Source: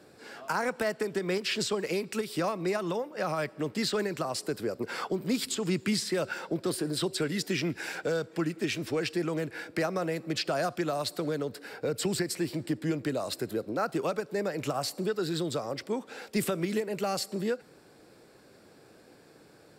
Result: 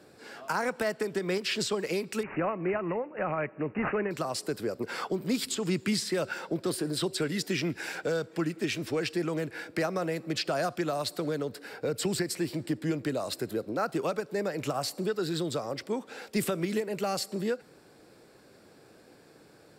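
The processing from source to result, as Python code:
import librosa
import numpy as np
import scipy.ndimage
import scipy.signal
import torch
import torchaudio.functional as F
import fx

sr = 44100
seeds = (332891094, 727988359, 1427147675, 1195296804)

y = fx.resample_bad(x, sr, factor=8, down='none', up='filtered', at=(2.23, 4.11))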